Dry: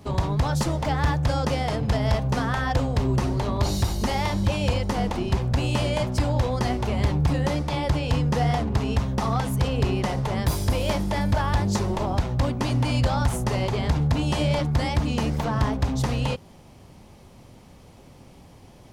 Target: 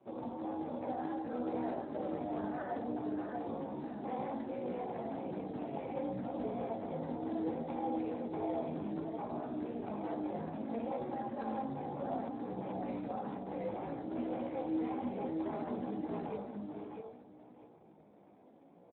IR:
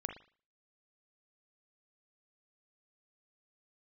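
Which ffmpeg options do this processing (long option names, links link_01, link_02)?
-filter_complex "[0:a]equalizer=frequency=1600:width_type=o:width=2:gain=-6.5,bandreject=frequency=1500:width=14,aecho=1:1:1.3:0.49,alimiter=limit=-18.5dB:level=0:latency=1:release=34,tremolo=f=230:d=0.75,highpass=frequency=270:width_type=q:width=0.5412,highpass=frequency=270:width_type=q:width=1.307,lowpass=frequency=2300:width_type=q:width=0.5176,lowpass=frequency=2300:width_type=q:width=0.7071,lowpass=frequency=2300:width_type=q:width=1.932,afreqshift=-58,aecho=1:1:652|1304|1956:0.631|0.139|0.0305[link_01];[1:a]atrim=start_sample=2205,asetrate=26901,aresample=44100[link_02];[link_01][link_02]afir=irnorm=-1:irlink=0,flanger=delay=16:depth=3.9:speed=0.63,volume=-3.5dB" -ar 8000 -c:a libspeex -b:a 8k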